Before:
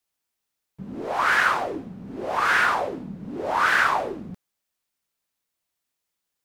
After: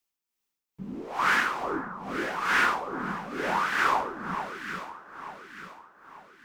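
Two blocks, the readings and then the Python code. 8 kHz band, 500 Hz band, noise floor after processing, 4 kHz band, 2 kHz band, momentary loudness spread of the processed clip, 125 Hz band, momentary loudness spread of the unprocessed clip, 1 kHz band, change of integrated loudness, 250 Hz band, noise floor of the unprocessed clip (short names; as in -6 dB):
-3.0 dB, -5.0 dB, under -85 dBFS, -3.0 dB, -4.5 dB, 19 LU, -3.0 dB, 17 LU, -3.5 dB, -5.5 dB, -1.5 dB, -82 dBFS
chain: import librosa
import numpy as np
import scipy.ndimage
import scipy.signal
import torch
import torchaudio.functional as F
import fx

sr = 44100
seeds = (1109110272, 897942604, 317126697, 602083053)

y = fx.graphic_eq_15(x, sr, hz=(100, 630, 1600, 4000, 10000), db=(-12, -7, -4, -3, -4))
y = y * (1.0 - 0.58 / 2.0 + 0.58 / 2.0 * np.cos(2.0 * np.pi * 2.3 * (np.arange(len(y)) / sr)))
y = fx.echo_alternate(y, sr, ms=445, hz=1200.0, feedback_pct=63, wet_db=-6.0)
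y = F.gain(torch.from_numpy(y), 1.0).numpy()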